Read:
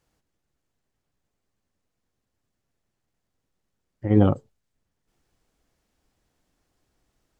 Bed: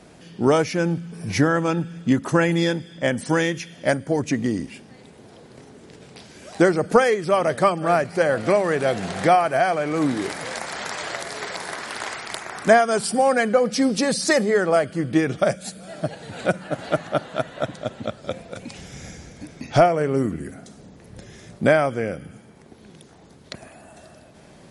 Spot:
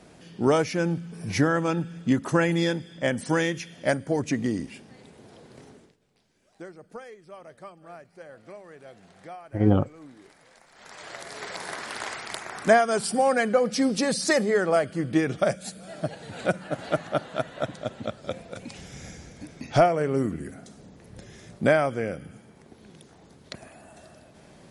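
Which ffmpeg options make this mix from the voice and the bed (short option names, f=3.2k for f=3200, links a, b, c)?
-filter_complex "[0:a]adelay=5500,volume=-2.5dB[a];[1:a]volume=18.5dB,afade=t=out:st=5.7:d=0.25:silence=0.0794328,afade=t=in:st=10.73:d=0.97:silence=0.0794328[b];[a][b]amix=inputs=2:normalize=0"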